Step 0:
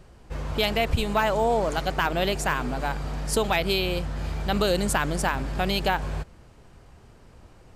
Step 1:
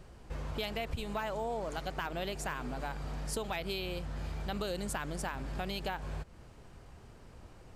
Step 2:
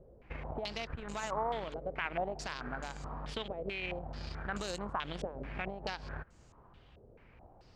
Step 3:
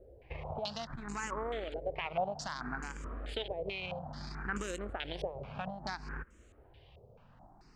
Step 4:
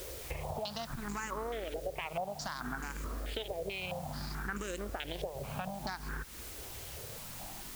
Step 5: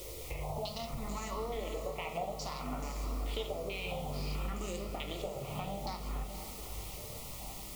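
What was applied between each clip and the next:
downward compressor 2.5 to 1, threshold −36 dBFS, peak gain reduction 12 dB; level −2.5 dB
brickwall limiter −28 dBFS, peak gain reduction 4.5 dB; harmonic generator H 3 −14 dB, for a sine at −27.5 dBFS; low-pass on a step sequencer 4.6 Hz 520–7,000 Hz; level +1 dB
frequency shifter mixed with the dry sound +0.61 Hz; level +3 dB
in parallel at −4 dB: bit-depth reduction 8 bits, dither triangular; on the sum: downward compressor 3 to 1, threshold −44 dBFS, peak gain reduction 14.5 dB; level +5.5 dB
Butterworth band-reject 1,600 Hz, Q 2.6; feedback delay with all-pass diffusion 544 ms, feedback 48%, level −8.5 dB; convolution reverb RT60 0.50 s, pre-delay 7 ms, DRR 4 dB; level −2 dB

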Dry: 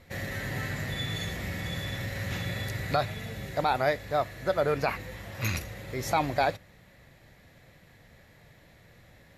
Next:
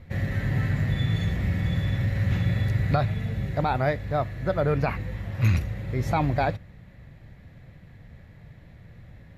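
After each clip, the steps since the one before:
bass and treble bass +12 dB, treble −10 dB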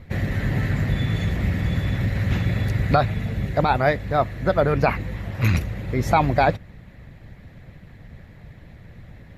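harmonic and percussive parts rebalanced harmonic −8 dB
level +8.5 dB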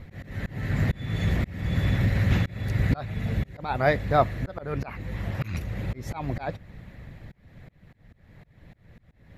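volume swells 400 ms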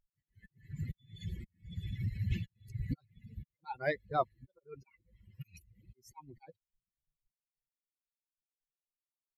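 spectral dynamics exaggerated over time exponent 3
level −7 dB

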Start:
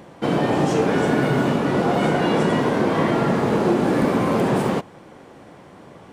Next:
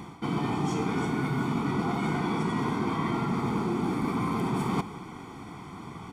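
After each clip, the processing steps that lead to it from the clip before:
comb filter 0.9 ms, depth 90%
reversed playback
downward compressor 12 to 1, threshold −25 dBFS, peak gain reduction 14 dB
reversed playback
convolution reverb RT60 0.80 s, pre-delay 111 ms, DRR 15 dB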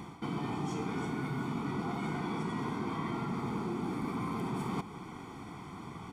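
downward compressor 1.5 to 1, threshold −36 dBFS, peak gain reduction 5 dB
level −3 dB

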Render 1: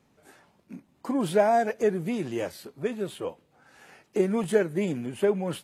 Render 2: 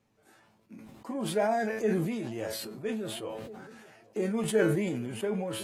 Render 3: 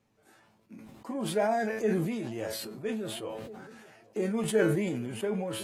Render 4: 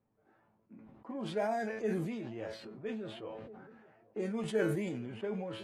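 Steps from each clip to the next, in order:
tuned comb filter 110 Hz, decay 0.22 s, harmonics all, mix 80%; delay with a low-pass on its return 827 ms, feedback 52%, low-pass 920 Hz, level −24 dB; level that may fall only so fast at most 29 dB per second
no processing that can be heard
low-pass that shuts in the quiet parts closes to 1,300 Hz, open at −23 dBFS; level −6 dB

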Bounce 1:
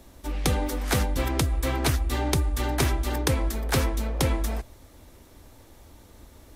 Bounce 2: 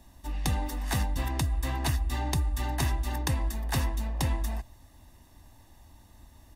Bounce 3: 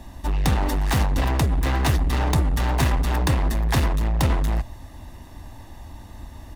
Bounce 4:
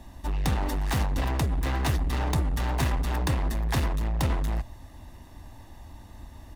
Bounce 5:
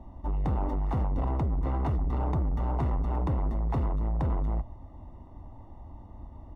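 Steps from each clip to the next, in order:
comb filter 1.1 ms, depth 66%; level −7 dB
high-shelf EQ 4,300 Hz −9 dB; in parallel at +1 dB: wave folding −33.5 dBFS; on the sum: level +8 dB
surface crackle 32 per second −49 dBFS; level −5.5 dB
Savitzky-Golay smoothing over 65 samples; soft clipping −21 dBFS, distortion −19 dB

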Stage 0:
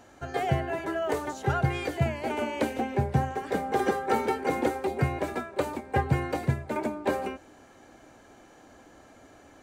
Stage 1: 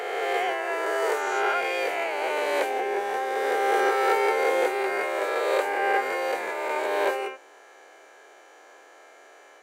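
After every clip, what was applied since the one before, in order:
peak hold with a rise ahead of every peak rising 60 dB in 2.41 s
Chebyshev high-pass filter 400 Hz, order 4
parametric band 2,100 Hz +4.5 dB 1 octave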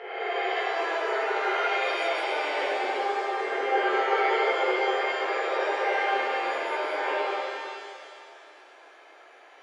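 gate on every frequency bin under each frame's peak −25 dB strong
transistor ladder low-pass 5,400 Hz, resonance 25%
reverb with rising layers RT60 2.2 s, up +7 semitones, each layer −8 dB, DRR −10 dB
level −6 dB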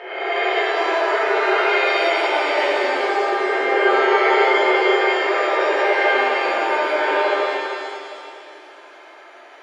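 convolution reverb RT60 1.9 s, pre-delay 3 ms, DRR −1.5 dB
level +5 dB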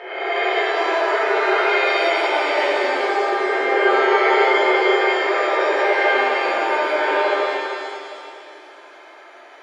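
notch filter 2,800 Hz, Q 22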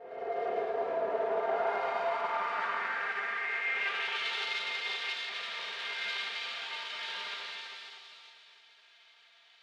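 lower of the sound and its delayed copy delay 4.3 ms
band-pass filter sweep 520 Hz → 3,600 Hz, 0:01.10–0:04.43
level −5.5 dB

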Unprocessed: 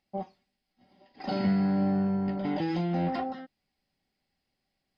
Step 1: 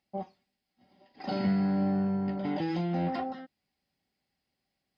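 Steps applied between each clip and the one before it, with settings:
high-pass filter 51 Hz
level −1.5 dB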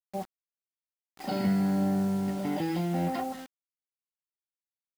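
bit-depth reduction 8 bits, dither none
level +1 dB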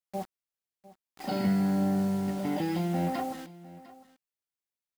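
single-tap delay 703 ms −19 dB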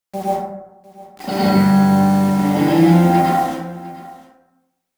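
dense smooth reverb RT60 0.95 s, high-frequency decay 0.4×, pre-delay 90 ms, DRR −7 dB
level +8.5 dB

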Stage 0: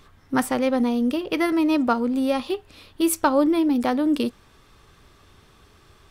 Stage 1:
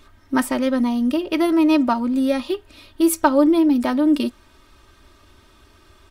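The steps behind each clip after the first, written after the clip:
comb filter 3.2 ms, depth 70%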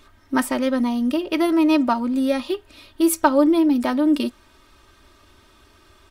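low-shelf EQ 220 Hz −3.5 dB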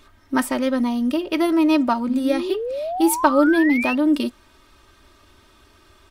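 sound drawn into the spectrogram rise, 0:02.08–0:03.95, 220–2,800 Hz −26 dBFS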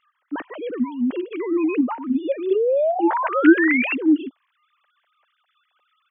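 three sine waves on the formant tracks
level −1 dB

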